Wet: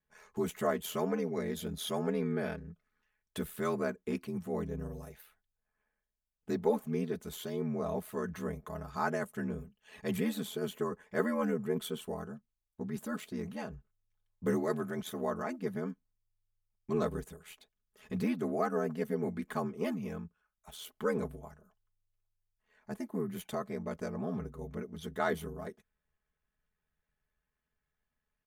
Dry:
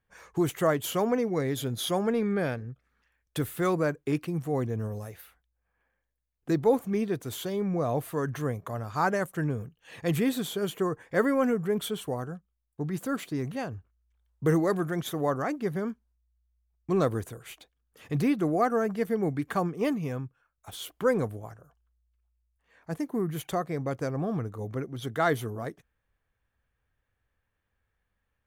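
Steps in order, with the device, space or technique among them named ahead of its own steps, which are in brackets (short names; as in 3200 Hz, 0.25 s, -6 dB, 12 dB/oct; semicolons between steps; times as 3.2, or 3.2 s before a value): ring-modulated robot voice (ring modulator 41 Hz; comb 4.7 ms, depth 71%); gain -5.5 dB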